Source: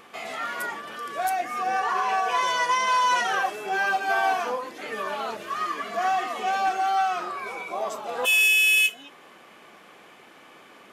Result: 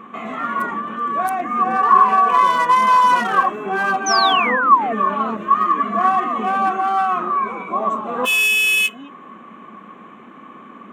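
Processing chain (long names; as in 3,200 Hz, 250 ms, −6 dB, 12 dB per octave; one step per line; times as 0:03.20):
adaptive Wiener filter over 9 samples
sound drawn into the spectrogram fall, 0:04.06–0:04.93, 650–6,300 Hz −25 dBFS
hollow resonant body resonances 220/1,100 Hz, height 17 dB, ringing for 35 ms
level +3 dB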